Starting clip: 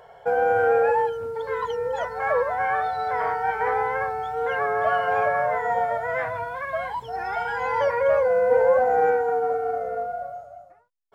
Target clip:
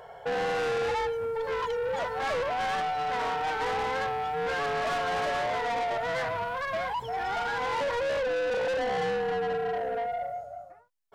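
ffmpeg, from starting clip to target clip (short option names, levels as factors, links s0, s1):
-filter_complex "[0:a]asettb=1/sr,asplit=3[s0][s1][s2];[s0]atrim=end=8.344[s3];[s1]atrim=start=8.34:end=10.53,asetpts=PTS-STARTPTS,afade=t=in:d=0.004:c=qsin,afade=t=out:st=2.186:d=0.004:c=qsin,equalizer=f=1200:w=4.9:g=-13[s4];[s2]atrim=start=10.526[s5];[s3][s4]acrossfade=d=0.004:c1=hsin:c2=qsin[s6];[s6][s5]acrossfade=d=0.004:c1=qsin:c2=hsin,asoftclip=type=tanh:threshold=0.0355,volume=1.26"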